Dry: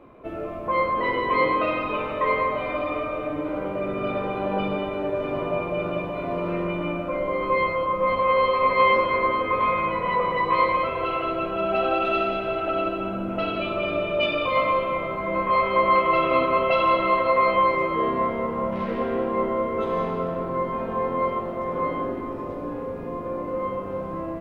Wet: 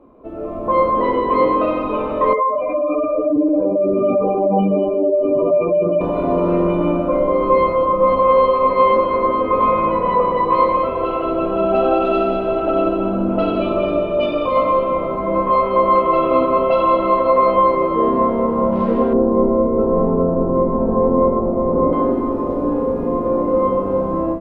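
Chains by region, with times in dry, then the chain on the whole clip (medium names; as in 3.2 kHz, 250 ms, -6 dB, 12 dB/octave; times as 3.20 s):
2.33–6.01 s: spectral contrast enhancement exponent 2.3 + peaking EQ 2.9 kHz +11.5 dB 0.22 oct + hard clipper -15 dBFS
19.13–21.93 s: Bessel low-pass 890 Hz + tilt EQ -1.5 dB/octave
whole clip: bass shelf 160 Hz +11.5 dB; level rider; graphic EQ 125/250/500/1000/2000 Hz -6/+9/+6/+7/-6 dB; trim -8.5 dB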